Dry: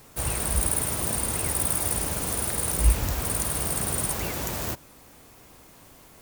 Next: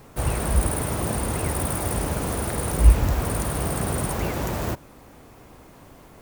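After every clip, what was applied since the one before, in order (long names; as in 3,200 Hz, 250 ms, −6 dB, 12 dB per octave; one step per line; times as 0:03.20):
high-shelf EQ 2,400 Hz −12 dB
level +6.5 dB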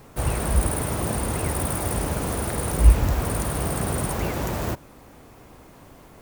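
no processing that can be heard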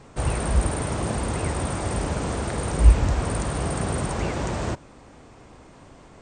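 linear-phase brick-wall low-pass 9,100 Hz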